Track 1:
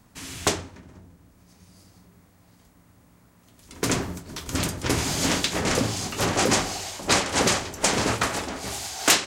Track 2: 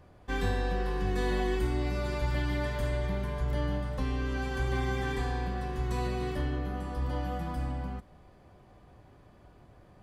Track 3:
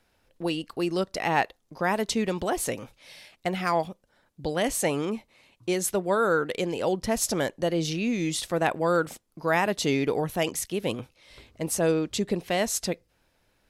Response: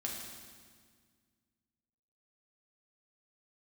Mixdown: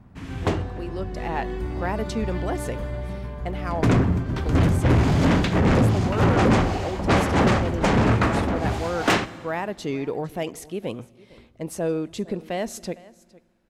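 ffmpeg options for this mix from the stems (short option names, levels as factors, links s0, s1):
-filter_complex "[0:a]bass=f=250:g=8,treble=f=4000:g=-13,volume=1.12,asplit=2[s0][s1];[s1]volume=0.141[s2];[1:a]volume=0.422[s3];[2:a]volume=0.335,asplit=3[s4][s5][s6];[s5]volume=0.0891[s7];[s6]volume=0.0891[s8];[3:a]atrim=start_sample=2205[s9];[s2][s7]amix=inputs=2:normalize=0[s10];[s10][s9]afir=irnorm=-1:irlink=0[s11];[s8]aecho=0:1:457:1[s12];[s0][s3][s4][s11][s12]amix=inputs=5:normalize=0,highshelf=f=2500:g=-9.5,dynaudnorm=f=220:g=7:m=2.66,asoftclip=type=tanh:threshold=0.237"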